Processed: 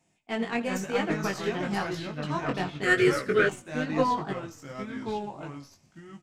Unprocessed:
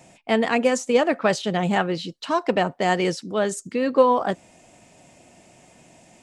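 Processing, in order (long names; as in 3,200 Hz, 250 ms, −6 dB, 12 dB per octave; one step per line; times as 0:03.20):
stylus tracing distortion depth 0.027 ms
parametric band 580 Hz −12 dB 0.34 octaves
on a send: echo with shifted repeats 83 ms, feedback 47%, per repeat −37 Hz, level −15 dB
on the sum: delay with pitch and tempo change per echo 331 ms, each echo −3 semitones, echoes 2
downsampling to 32,000 Hz
chorus effect 0.99 Hz, delay 19 ms, depth 2.7 ms
0:02.83–0:03.49: drawn EQ curve 300 Hz 0 dB, 430 Hz +11 dB, 900 Hz −15 dB, 1,400 Hz +12 dB, 3,200 Hz +2 dB, 7,000 Hz +3 dB, 9,900 Hz +10 dB
expander for the loud parts 1.5 to 1, over −43 dBFS
level −2 dB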